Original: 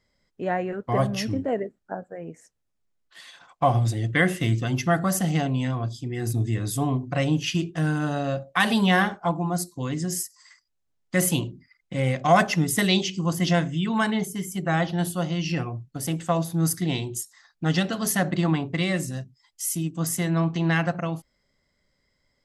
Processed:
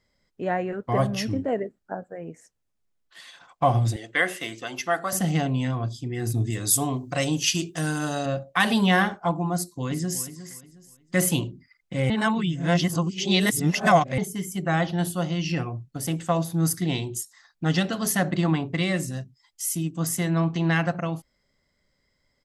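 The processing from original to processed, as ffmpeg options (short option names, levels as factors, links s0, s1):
-filter_complex "[0:a]asettb=1/sr,asplit=3[s0][s1][s2];[s0]atrim=end=3.964[s3];[s1]atrim=start=3.96:end=5.13,asetpts=PTS-STARTPTS,afade=t=in:d=0.004:c=qsin,afade=t=out:st=1.166:d=0.004:c=qsin,highpass=490[s4];[s2]atrim=start=5.126[s5];[s3][s4]acrossfade=d=0.004:c1=hsin:c2=qsin[s6];[s6][s5]acrossfade=d=0.004:c1=qsin:c2=hsin,asettb=1/sr,asplit=3[s7][s8][s9];[s7]atrim=end=6.504[s10];[s8]atrim=start=6.5:end=8.26,asetpts=PTS-STARTPTS,afade=t=in:d=0.004:c=qsin,afade=t=out:st=1.756:d=0.004:c=qsin,bass=f=250:g=-5,treble=f=4000:g=13[s11];[s9]atrim=start=8.256[s12];[s10][s11]acrossfade=d=0.004:c1=hsin:c2=qsin[s13];[s13][s12]acrossfade=d=0.004:c1=qsin:c2=hsin,asplit=2[s14][s15];[s15]afade=t=in:st=9.54:d=0.01,afade=t=out:st=10.24:d=0.01,aecho=0:1:360|720|1080:0.223872|0.0671616|0.0201485[s16];[s14][s16]amix=inputs=2:normalize=0,asplit=3[s17][s18][s19];[s17]atrim=end=12.102[s20];[s18]atrim=start=12.098:end=14.182,asetpts=PTS-STARTPTS,areverse[s21];[s19]atrim=start=14.178[s22];[s20][s21]acrossfade=d=0.004:c1=hsin:c2=hsin[s23];[s23][s22]acrossfade=d=0.004:c1=hsin:c2=hsin"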